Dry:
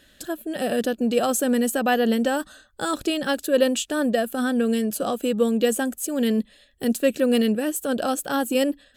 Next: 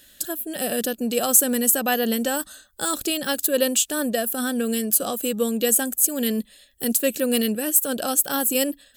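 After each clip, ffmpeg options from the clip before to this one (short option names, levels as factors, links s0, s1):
-af "aemphasis=mode=production:type=75fm,volume=0.794"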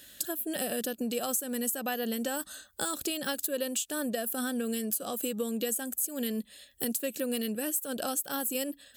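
-af "highpass=55,acompressor=threshold=0.0316:ratio=5"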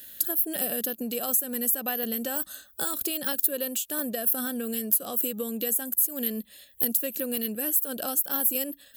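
-af "aexciter=amount=4.1:drive=4.9:freq=11000"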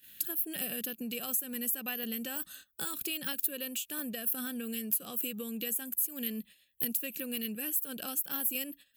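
-af "agate=range=0.251:threshold=0.00562:ratio=16:detection=peak,equalizer=f=160:t=o:w=0.67:g=8,equalizer=f=630:t=o:w=0.67:g=-7,equalizer=f=2500:t=o:w=0.67:g=10,volume=0.422"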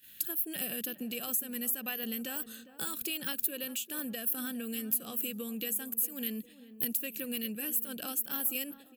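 -filter_complex "[0:a]asplit=2[s0][s1];[s1]adelay=405,lowpass=f=1000:p=1,volume=0.211,asplit=2[s2][s3];[s3]adelay=405,lowpass=f=1000:p=1,volume=0.55,asplit=2[s4][s5];[s5]adelay=405,lowpass=f=1000:p=1,volume=0.55,asplit=2[s6][s7];[s7]adelay=405,lowpass=f=1000:p=1,volume=0.55,asplit=2[s8][s9];[s9]adelay=405,lowpass=f=1000:p=1,volume=0.55,asplit=2[s10][s11];[s11]adelay=405,lowpass=f=1000:p=1,volume=0.55[s12];[s0][s2][s4][s6][s8][s10][s12]amix=inputs=7:normalize=0"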